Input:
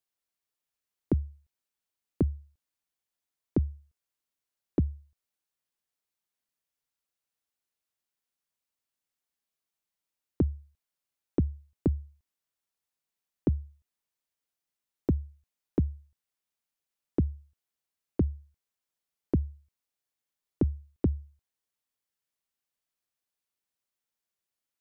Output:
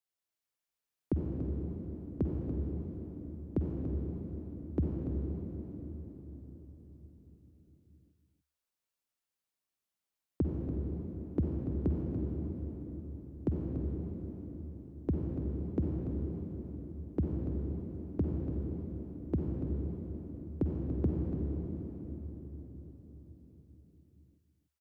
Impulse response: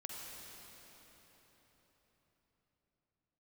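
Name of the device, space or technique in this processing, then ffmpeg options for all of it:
cave: -filter_complex "[0:a]aecho=1:1:288:0.316[a];[1:a]atrim=start_sample=2205[b];[a][b]afir=irnorm=-1:irlink=0"

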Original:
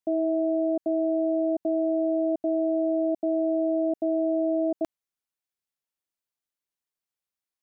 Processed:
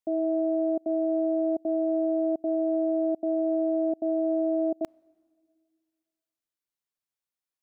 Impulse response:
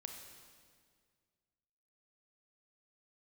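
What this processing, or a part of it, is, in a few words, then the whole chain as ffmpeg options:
keyed gated reverb: -filter_complex "[0:a]asplit=3[a][b][c];[1:a]atrim=start_sample=2205[d];[b][d]afir=irnorm=-1:irlink=0[e];[c]apad=whole_len=336363[f];[e][f]sidechaingate=range=-23dB:threshold=-22dB:ratio=16:detection=peak,volume=4dB[g];[a][g]amix=inputs=2:normalize=0,volume=-3dB"

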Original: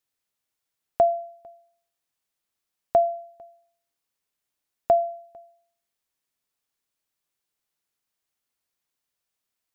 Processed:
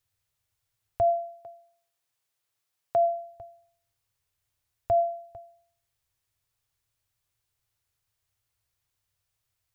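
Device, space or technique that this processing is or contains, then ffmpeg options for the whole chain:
car stereo with a boomy subwoofer: -filter_complex "[0:a]asplit=3[a][b][c];[a]afade=t=out:st=1.09:d=0.02[d];[b]highpass=220,afade=t=in:st=1.09:d=0.02,afade=t=out:st=3.06:d=0.02[e];[c]afade=t=in:st=3.06:d=0.02[f];[d][e][f]amix=inputs=3:normalize=0,lowshelf=f=150:t=q:w=3:g=12,alimiter=limit=-19.5dB:level=0:latency=1:release=27,volume=2dB"

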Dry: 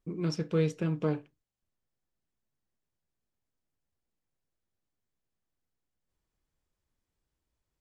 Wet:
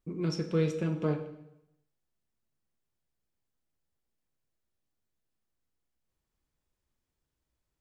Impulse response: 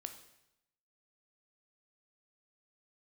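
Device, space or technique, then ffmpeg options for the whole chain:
bathroom: -filter_complex "[1:a]atrim=start_sample=2205[a];[0:a][a]afir=irnorm=-1:irlink=0,volume=3.5dB"

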